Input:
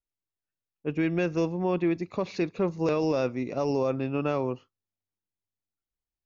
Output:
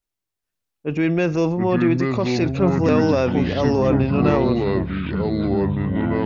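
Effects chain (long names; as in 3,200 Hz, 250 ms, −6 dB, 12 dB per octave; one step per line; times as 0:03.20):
transient designer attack −2 dB, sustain +6 dB
delay with pitch and tempo change per echo 432 ms, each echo −5 semitones, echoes 3
level +7 dB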